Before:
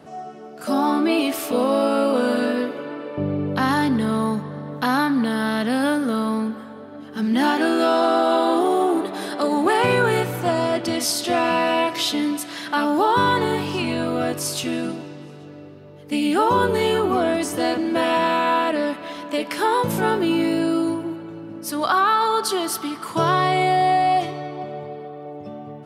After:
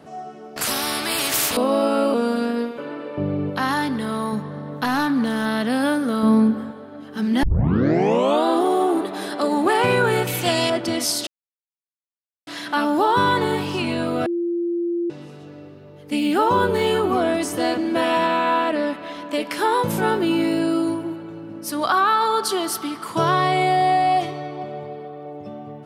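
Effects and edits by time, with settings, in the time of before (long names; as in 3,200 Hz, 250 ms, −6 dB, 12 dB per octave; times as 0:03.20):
0:00.56–0:01.57: every bin compressed towards the loudest bin 4 to 1
0:02.14–0:02.78: phases set to zero 236 Hz
0:03.50–0:04.33: low-shelf EQ 420 Hz −6.5 dB
0:04.84–0:05.46: gain into a clipping stage and back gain 15 dB
0:06.23–0:06.71: low-shelf EQ 460 Hz +10.5 dB
0:07.43: tape start 1.02 s
0:10.27–0:10.70: high shelf with overshoot 1,900 Hz +10 dB, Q 1.5
0:11.27–0:12.47: silence
0:14.26–0:15.10: beep over 344 Hz −20 dBFS
0:16.19–0:16.87: linearly interpolated sample-rate reduction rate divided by 2×
0:18.26–0:19.31: high-shelf EQ 5,800 Hz −6 dB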